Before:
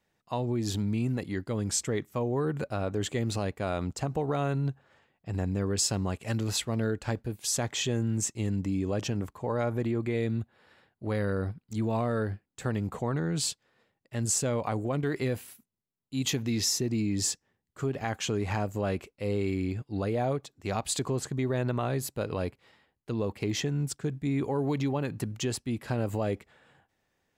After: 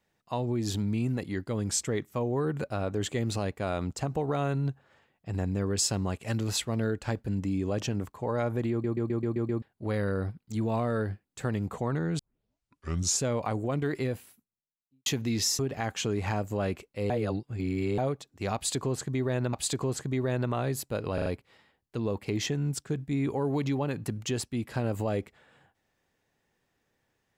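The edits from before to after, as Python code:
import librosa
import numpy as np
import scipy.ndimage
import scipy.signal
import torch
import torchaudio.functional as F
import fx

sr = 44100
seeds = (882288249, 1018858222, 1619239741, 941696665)

y = fx.studio_fade_out(x, sr, start_s=15.02, length_s=1.25)
y = fx.edit(y, sr, fx.cut(start_s=7.28, length_s=1.21),
    fx.stutter_over(start_s=9.92, slice_s=0.13, count=7),
    fx.tape_start(start_s=13.4, length_s=1.04),
    fx.cut(start_s=16.8, length_s=1.03),
    fx.reverse_span(start_s=19.34, length_s=0.88),
    fx.repeat(start_s=20.79, length_s=0.98, count=2),
    fx.stutter(start_s=22.4, slice_s=0.04, count=4), tone=tone)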